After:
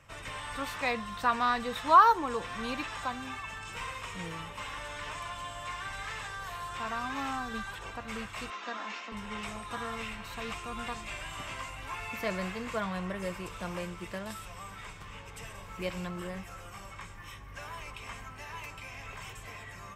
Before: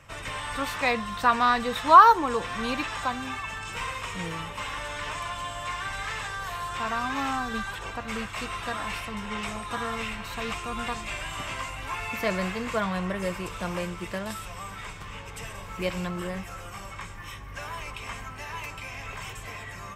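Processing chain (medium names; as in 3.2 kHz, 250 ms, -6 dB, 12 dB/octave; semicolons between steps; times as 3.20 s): 8.50–9.12 s: Chebyshev band-pass 210–7000 Hz, order 5; trim -6 dB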